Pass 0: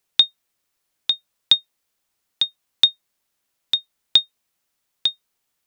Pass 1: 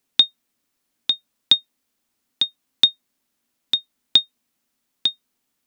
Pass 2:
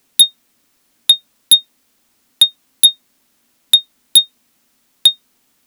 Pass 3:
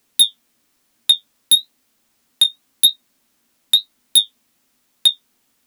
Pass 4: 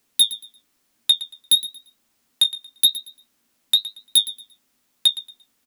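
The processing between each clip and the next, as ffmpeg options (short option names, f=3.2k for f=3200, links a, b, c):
-af "equalizer=f=250:t=o:w=0.63:g=13.5"
-af "aeval=exprs='0.891*(cos(1*acos(clip(val(0)/0.891,-1,1)))-cos(1*PI/2))+0.0224*(cos(7*acos(clip(val(0)/0.891,-1,1)))-cos(7*PI/2))':c=same,aeval=exprs='0.891*sin(PI/2*3.98*val(0)/0.891)':c=same"
-af "flanger=delay=8.7:depth=9.3:regen=-36:speed=1:shape=sinusoidal"
-af "aecho=1:1:115|230|345:0.158|0.0412|0.0107,volume=-3.5dB"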